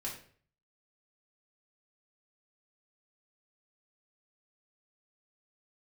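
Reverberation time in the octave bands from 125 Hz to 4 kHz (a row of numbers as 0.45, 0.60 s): 0.70, 0.50, 0.55, 0.45, 0.45, 0.40 s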